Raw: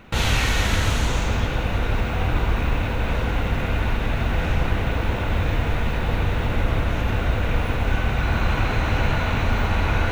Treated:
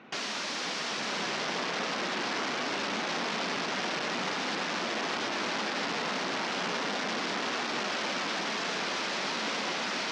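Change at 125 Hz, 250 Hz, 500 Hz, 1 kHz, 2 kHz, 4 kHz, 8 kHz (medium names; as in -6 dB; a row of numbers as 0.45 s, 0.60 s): -27.0 dB, -9.0 dB, -6.5 dB, -4.5 dB, -4.5 dB, -0.5 dB, -2.0 dB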